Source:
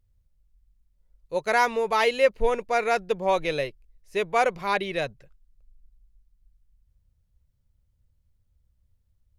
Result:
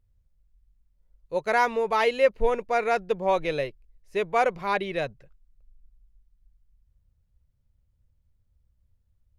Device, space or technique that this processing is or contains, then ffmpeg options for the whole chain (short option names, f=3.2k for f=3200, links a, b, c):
behind a face mask: -af "highshelf=f=3.2k:g=-7"